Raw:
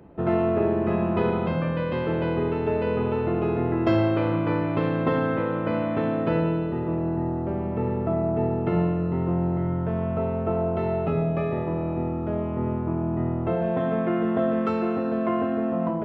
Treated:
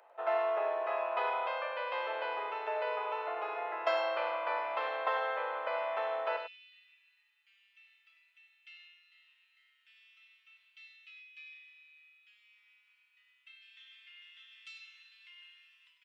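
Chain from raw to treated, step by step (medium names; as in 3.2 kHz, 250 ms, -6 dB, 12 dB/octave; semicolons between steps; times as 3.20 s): steep high-pass 610 Hz 36 dB/octave, from 6.36 s 2.6 kHz; delay 98 ms -9 dB; trim -2 dB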